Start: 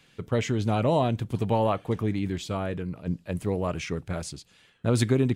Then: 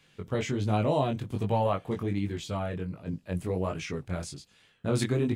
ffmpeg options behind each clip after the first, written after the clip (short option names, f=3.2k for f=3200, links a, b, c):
-af "flanger=delay=19:depth=3.6:speed=1.3"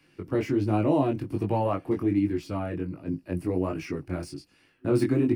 -filter_complex "[0:a]acrossover=split=240|440|1800[a][b][c][d];[d]asoftclip=type=tanh:threshold=-37dB[e];[a][b][c][e]amix=inputs=4:normalize=0,superequalizer=6b=3.55:13b=0.355:15b=0.398"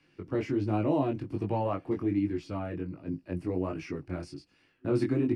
-af "lowpass=6.6k,volume=-4dB"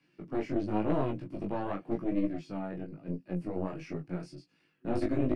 -af "lowshelf=f=110:t=q:w=3:g=-10,aeval=exprs='0.224*(cos(1*acos(clip(val(0)/0.224,-1,1)))-cos(1*PI/2))+0.0708*(cos(4*acos(clip(val(0)/0.224,-1,1)))-cos(4*PI/2))+0.0224*(cos(6*acos(clip(val(0)/0.224,-1,1)))-cos(6*PI/2))+0.00891*(cos(8*acos(clip(val(0)/0.224,-1,1)))-cos(8*PI/2))':c=same,flanger=delay=16:depth=5:speed=0.93,volume=-2dB"